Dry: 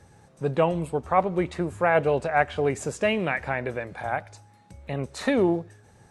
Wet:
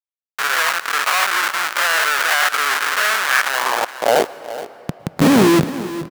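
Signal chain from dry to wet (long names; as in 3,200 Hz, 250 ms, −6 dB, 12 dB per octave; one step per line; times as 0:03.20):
every bin's largest magnitude spread in time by 120 ms
dynamic equaliser 310 Hz, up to +4 dB, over −34 dBFS, Q 3.3
comparator with hysteresis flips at −20.5 dBFS
high-pass filter sweep 1,400 Hz → 160 Hz, 0:03.44–0:04.90
single-tap delay 422 ms −15 dB
on a send at −18 dB: convolution reverb RT60 4.0 s, pre-delay 101 ms
on the sum: level +7.5 dB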